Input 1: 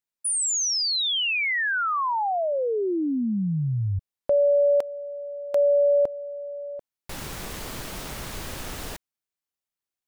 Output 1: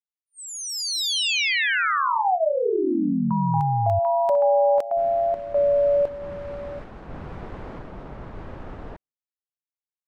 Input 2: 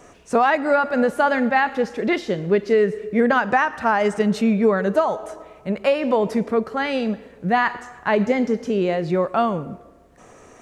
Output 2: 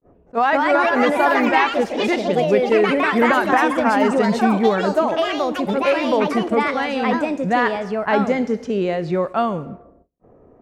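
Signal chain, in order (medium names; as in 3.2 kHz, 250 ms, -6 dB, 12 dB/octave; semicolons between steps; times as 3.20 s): gate with hold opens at -40 dBFS, closes at -42 dBFS, hold 118 ms, range -28 dB; level-controlled noise filter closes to 470 Hz, open at -18.5 dBFS; ever faster or slower copies 251 ms, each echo +3 st, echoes 3; attacks held to a fixed rise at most 500 dB/s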